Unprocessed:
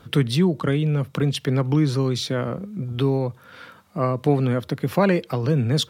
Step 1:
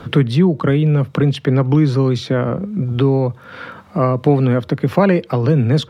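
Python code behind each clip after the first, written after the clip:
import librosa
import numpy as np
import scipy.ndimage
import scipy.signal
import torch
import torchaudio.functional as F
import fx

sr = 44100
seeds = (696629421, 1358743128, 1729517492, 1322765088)

y = fx.lowpass(x, sr, hz=2100.0, slope=6)
y = fx.band_squash(y, sr, depth_pct=40)
y = y * 10.0 ** (6.5 / 20.0)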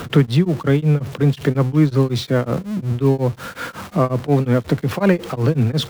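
y = x + 0.5 * 10.0 ** (-26.5 / 20.0) * np.sign(x)
y = y * np.abs(np.cos(np.pi * 5.5 * np.arange(len(y)) / sr))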